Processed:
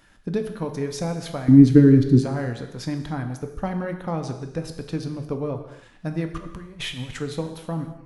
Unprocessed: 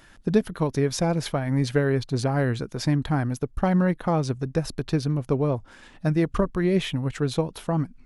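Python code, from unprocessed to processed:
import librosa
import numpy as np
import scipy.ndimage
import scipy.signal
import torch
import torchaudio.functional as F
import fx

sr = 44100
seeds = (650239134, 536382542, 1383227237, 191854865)

y = fx.low_shelf_res(x, sr, hz=450.0, db=12.5, q=3.0, at=(1.48, 2.19))
y = fx.over_compress(y, sr, threshold_db=-29.0, ratio=-0.5, at=(6.37, 7.2))
y = fx.rev_gated(y, sr, seeds[0], gate_ms=350, shape='falling', drr_db=5.5)
y = F.gain(torch.from_numpy(y), -5.0).numpy()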